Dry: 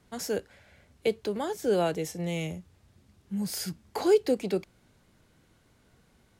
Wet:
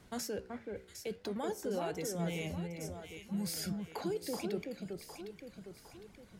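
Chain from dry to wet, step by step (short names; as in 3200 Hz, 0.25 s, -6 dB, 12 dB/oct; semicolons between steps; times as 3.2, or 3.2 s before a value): reverb removal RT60 1.7 s; reverse; compressor 4:1, threshold -36 dBFS, peak gain reduction 16 dB; reverse; limiter -35 dBFS, peak gain reduction 9 dB; flange 0.81 Hz, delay 9.9 ms, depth 7.9 ms, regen +84%; echo with dull and thin repeats by turns 0.379 s, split 1900 Hz, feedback 66%, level -3.5 dB; gain +9 dB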